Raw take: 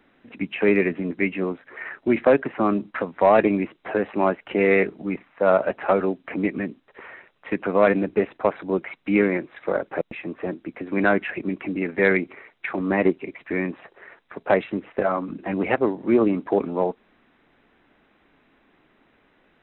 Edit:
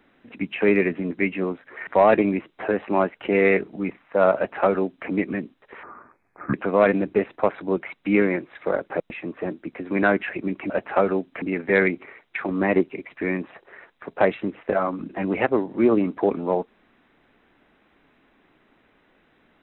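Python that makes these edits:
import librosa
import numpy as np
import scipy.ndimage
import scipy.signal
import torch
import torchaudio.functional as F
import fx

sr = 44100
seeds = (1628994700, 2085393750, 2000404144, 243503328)

y = fx.edit(x, sr, fx.cut(start_s=1.87, length_s=1.26),
    fx.duplicate(start_s=5.62, length_s=0.72, to_s=11.71),
    fx.speed_span(start_s=7.09, length_s=0.46, speed=0.65), tone=tone)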